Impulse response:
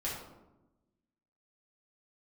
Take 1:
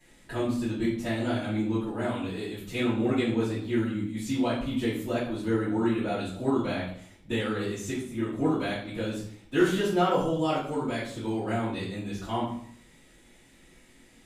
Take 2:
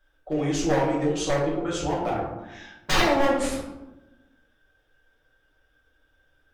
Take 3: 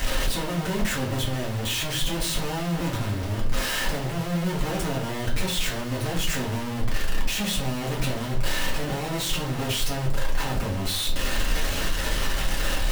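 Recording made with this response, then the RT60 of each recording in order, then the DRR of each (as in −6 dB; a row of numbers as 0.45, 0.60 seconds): 2; 0.60, 1.0, 0.40 seconds; −13.0, −7.5, −5.0 decibels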